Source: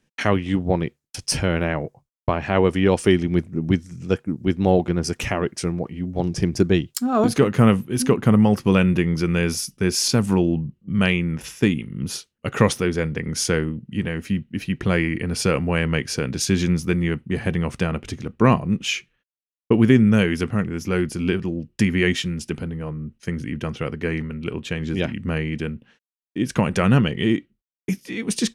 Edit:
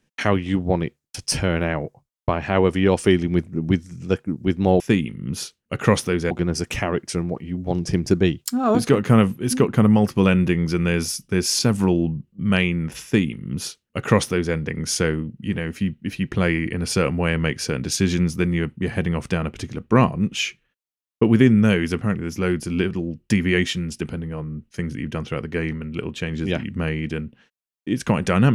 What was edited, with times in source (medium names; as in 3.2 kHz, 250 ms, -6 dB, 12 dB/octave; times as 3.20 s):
11.53–13.04 s: copy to 4.80 s